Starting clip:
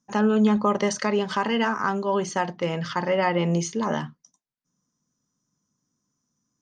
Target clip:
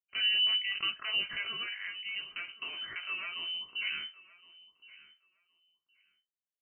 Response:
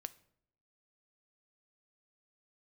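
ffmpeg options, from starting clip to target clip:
-filter_complex "[0:a]agate=range=0.0447:threshold=0.0178:ratio=16:detection=peak,aemphasis=mode=production:type=50fm,asettb=1/sr,asplit=3[s0][s1][s2];[s0]atrim=end=1.444[s3];[s1]atrim=start=1.44:end=3.75,asetpts=PTS-STARTPTS,afade=t=in:d=0.004:c=qsin,afade=t=out:st=2.306:d=0.004:c=qsin,acompressor=threshold=0.0447:ratio=6[s4];[s2]atrim=start=3.746[s5];[s3][s4]acrossfade=d=0.004:c1=hsin:c2=qsin[s6];[s6][s5]acrossfade=d=0.004:c1=qsin:c2=hsin,alimiter=limit=0.188:level=0:latency=1:release=175,flanger=delay=18:depth=2.2:speed=0.61,aecho=1:1:1067|2134:0.1|0.016,lowpass=f=2700:t=q:w=0.5098,lowpass=f=2700:t=q:w=0.6013,lowpass=f=2700:t=q:w=0.9,lowpass=f=2700:t=q:w=2.563,afreqshift=-3200,volume=0.531"

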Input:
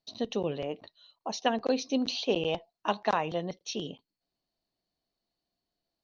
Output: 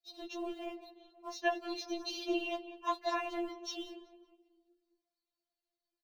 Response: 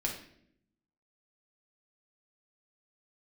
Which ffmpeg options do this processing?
-filter_complex "[0:a]asettb=1/sr,asplit=3[s0][s1][s2];[s0]atrim=end=2.504[s3];[s1]atrim=start=2.5:end=3.32,asetpts=PTS-STARTPTS,afade=t=in:d=0.004:c=qsin,afade=t=out:st=0.816:d=0.004:c=qsin,aemphasis=mode=production:type=cd[s4];[s2]atrim=start=3.316[s5];[s3][s4]acrossfade=d=0.004:c1=hsin:c2=qsin[s6];[s6][s5]acrossfade=d=0.004:c1=qsin:c2=hsin,asplit=2[s7][s8];[s8]aeval=exprs='val(0)*gte(abs(val(0)),0.0106)':c=same,volume=0.316[s9];[s7][s9]amix=inputs=2:normalize=0,asplit=2[s10][s11];[s11]adelay=187,lowpass=f=2400:p=1,volume=0.251,asplit=2[s12][s13];[s13]adelay=187,lowpass=f=2400:p=1,volume=0.55,asplit=2[s14][s15];[s15]adelay=187,lowpass=f=2400:p=1,volume=0.55,asplit=2[s16][s17];[s17]adelay=187,lowpass=f=2400:p=1,volume=0.55,asplit=2[s18][s19];[s19]adelay=187,lowpass=f=2400:p=1,volume=0.55,asplit=2[s20][s21];[s21]adelay=187,lowpass=f=2400:p=1,volume=0.55[s22];[s10][s12][s14][s16][s18][s20][s22]amix=inputs=7:normalize=0,afftfilt=real='hypot(re,im)*cos(2*PI*random(0))':imag='hypot(re,im)*sin(2*PI*random(1))':win_size=512:overlap=0.75,afftfilt=real='re*4*eq(mod(b,16),0)':imag='im*4*eq(mod(b,16),0)':win_size=2048:overlap=0.75"

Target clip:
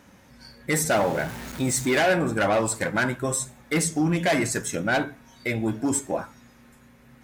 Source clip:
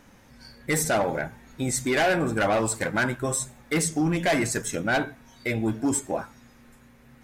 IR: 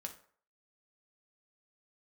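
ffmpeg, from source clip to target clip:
-filter_complex "[0:a]asettb=1/sr,asplit=3[s0][s1][s2];[s0]atrim=end=0.904[s3];[s1]atrim=start=0.9:end=2,asetpts=PTS-STARTPTS,afade=t=in:d=0.004:c=qsin,afade=t=out:st=1.096:d=0.004:c=qsin,aeval=exprs='val(0)+0.5*0.0224*sgn(val(0))':c=same[s4];[s2]atrim=start=1.996[s5];[s3][s4]acrossfade=d=0.004:c1=hsin:c2=qsin[s6];[s6][s5]acrossfade=d=0.004:c1=qsin:c2=hsin,highpass=42,asplit=2[s7][s8];[1:a]atrim=start_sample=2205,atrim=end_sample=3087[s9];[s8][s9]afir=irnorm=-1:irlink=0,volume=0.631[s10];[s7][s10]amix=inputs=2:normalize=0,volume=0.794"

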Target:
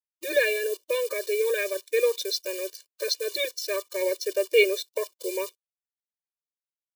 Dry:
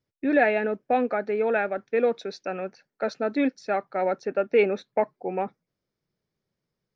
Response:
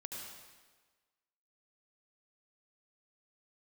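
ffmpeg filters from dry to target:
-af "acrusher=bits=9:dc=4:mix=0:aa=0.000001,aexciter=amount=6.3:drive=7:freq=2600,afftfilt=real='re*eq(mod(floor(b*sr/1024/310),2),1)':imag='im*eq(mod(floor(b*sr/1024/310),2),1)':win_size=1024:overlap=0.75"

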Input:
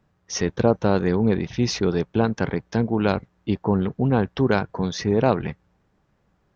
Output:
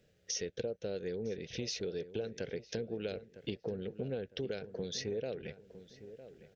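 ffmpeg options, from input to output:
-filter_complex "[0:a]firequalizer=gain_entry='entry(300,0);entry(480,13);entry(1000,-19);entry(1500,2);entry(2800,11)':delay=0.05:min_phase=1,acompressor=threshold=0.0282:ratio=6,asplit=2[s0][s1];[s1]adelay=957,lowpass=f=1700:p=1,volume=0.211,asplit=2[s2][s3];[s3]adelay=957,lowpass=f=1700:p=1,volume=0.36,asplit=2[s4][s5];[s5]adelay=957,lowpass=f=1700:p=1,volume=0.36[s6];[s2][s4][s6]amix=inputs=3:normalize=0[s7];[s0][s7]amix=inputs=2:normalize=0,volume=0.501"

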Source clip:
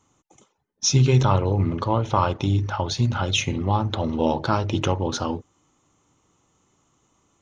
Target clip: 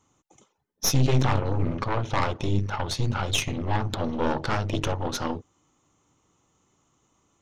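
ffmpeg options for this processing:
-af "aeval=exprs='0.562*(cos(1*acos(clip(val(0)/0.562,-1,1)))-cos(1*PI/2))+0.158*(cos(4*acos(clip(val(0)/0.562,-1,1)))-cos(4*PI/2))+0.112*(cos(5*acos(clip(val(0)/0.562,-1,1)))-cos(5*PI/2))+0.0794*(cos(8*acos(clip(val(0)/0.562,-1,1)))-cos(8*PI/2))':c=same,volume=0.376"

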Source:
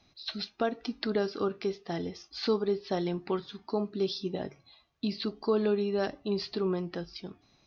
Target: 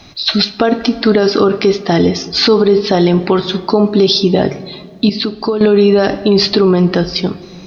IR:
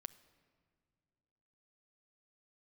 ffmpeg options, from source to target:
-filter_complex "[0:a]asettb=1/sr,asplit=3[s0][s1][s2];[s0]atrim=end=5.094[s3];[s1]atrim=start=5.09:end=5.61,asetpts=PTS-STARTPTS,afade=t=in:d=0.004:c=qsin,afade=t=out:st=0.516:d=0.004:c=qsin,acompressor=threshold=0.00891:ratio=5[s4];[s2]atrim=start=5.606[s5];[s3][s4]acrossfade=d=0.004:c1=hsin:c2=qsin[s6];[s6][s5]acrossfade=d=0.004:c1=qsin:c2=hsin,asplit=2[s7][s8];[1:a]atrim=start_sample=2205[s9];[s8][s9]afir=irnorm=-1:irlink=0,volume=5.31[s10];[s7][s10]amix=inputs=2:normalize=0,alimiter=level_in=5.31:limit=0.891:release=50:level=0:latency=1,volume=0.891"

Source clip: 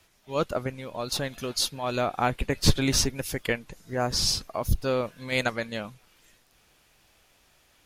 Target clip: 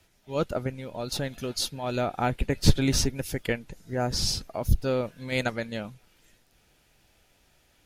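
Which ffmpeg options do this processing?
-af "lowshelf=f=450:g=5.5,bandreject=f=1100:w=7.2,volume=0.708"

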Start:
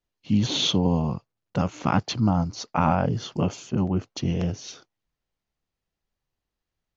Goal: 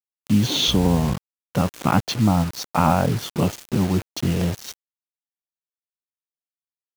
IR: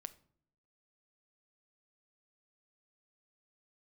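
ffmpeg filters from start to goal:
-filter_complex "[0:a]asettb=1/sr,asplit=3[s0][s1][s2];[s0]atrim=end=0.684[s3];[s1]atrim=start=0.68:end=1.14,asetpts=PTS-STARTPTS,afade=t=in:d=0.004:c=qsin,afade=t=out:st=0.456:d=0.004:c=qsin,aeval=exprs='val(0)+0.0251*(sin(2*PI*60*n/s)+sin(2*PI*2*60*n/s)/2+sin(2*PI*3*60*n/s)/3+sin(2*PI*4*60*n/s)/4+sin(2*PI*5*60*n/s)/5)':c=same[s4];[s2]atrim=start=1.136[s5];[s3][s4]acrossfade=d=0.004:c1=hsin:c2=qsin[s6];[s6][s5]acrossfade=d=0.004:c1=qsin:c2=hsin,acrusher=bits=5:mix=0:aa=0.000001,volume=1.5"

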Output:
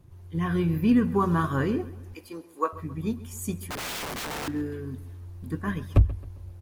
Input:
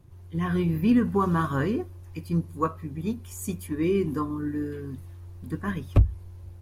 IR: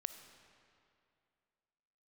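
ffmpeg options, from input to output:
-filter_complex "[0:a]asettb=1/sr,asplit=3[s0][s1][s2];[s0]atrim=end=2.144[s3];[s1]atrim=start=2.14:end=2.73,asetpts=PTS-STARTPTS,afade=t=in:d=0.004:c=qsin,afade=t=out:st=0.586:d=0.004:c=qsin,highpass=f=360:w=0.5412,highpass=f=360:w=1.3066[s4];[s2]atrim=start=2.726[s5];[s3][s4]acrossfade=d=0.004:c1=hsin:c2=qsin[s6];[s6][s5]acrossfade=d=0.004:c1=qsin:c2=hsin,asettb=1/sr,asplit=3[s7][s8][s9];[s7]atrim=end=3.624[s10];[s8]atrim=start=3.62:end=4.48,asetpts=PTS-STARTPTS,afade=t=in:d=0.004:c=qsin,afade=t=out:st=0.856:d=0.004:c=qsin,aeval=exprs='(mod(28.2*val(0)+1,2)-1)/28.2':c=same[s11];[s9]atrim=start=4.476[s12];[s10][s11]acrossfade=d=0.004:c1=hsin:c2=qsin[s13];[s13][s12]acrossfade=d=0.004:c1=qsin:c2=hsin,asplit=2[s14][s15];[s15]adelay=134,lowpass=f=4700:p=1,volume=0.133,asplit=2[s16][s17];[s17]adelay=134,lowpass=f=4700:p=1,volume=0.43,asplit=2[s18][s19];[s19]adelay=134,lowpass=f=4700:p=1,volume=0.43,asplit=2[s20][s21];[s21]adelay=134,lowpass=f=4700:p=1,volume=0.43[s22];[s14][s16][s18][s20][s22]amix=inputs=5:normalize=0"

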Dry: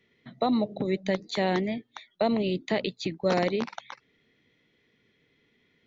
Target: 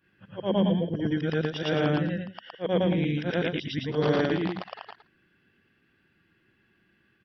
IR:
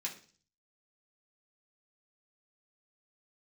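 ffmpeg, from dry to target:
-af "afftfilt=real='re':imag='-im':win_size=8192:overlap=0.75,asetrate=35721,aresample=44100,volume=1.88"

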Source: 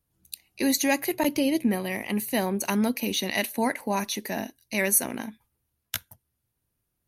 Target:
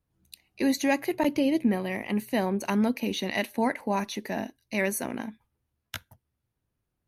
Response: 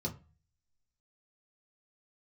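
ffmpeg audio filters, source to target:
-af "lowpass=f=2400:p=1"

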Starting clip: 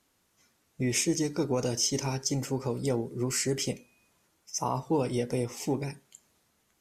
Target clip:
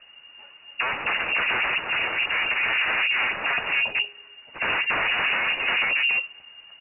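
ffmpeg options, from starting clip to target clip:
-filter_complex "[0:a]lowshelf=f=150:t=q:w=1.5:g=13.5,asplit=2[s0][s1];[s1]aecho=0:1:276:0.355[s2];[s0][s2]amix=inputs=2:normalize=0,flanger=delay=0.7:depth=2.3:regen=-58:speed=0.86:shape=triangular,apsyclip=21.1,aeval=exprs='0.224*(abs(mod(val(0)/0.224+3,4)-2)-1)':c=same,lowpass=f=2500:t=q:w=0.5098,lowpass=f=2500:t=q:w=0.6013,lowpass=f=2500:t=q:w=0.9,lowpass=f=2500:t=q:w=2.563,afreqshift=-2900,volume=0.596"

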